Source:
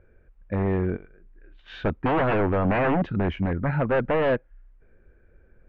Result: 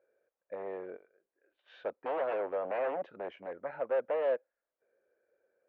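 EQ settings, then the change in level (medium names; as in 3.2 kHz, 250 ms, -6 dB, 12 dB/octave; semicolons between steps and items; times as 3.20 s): band-pass filter 520 Hz, Q 0.73; differentiator; peaking EQ 540 Hz +13 dB 0.93 oct; +4.0 dB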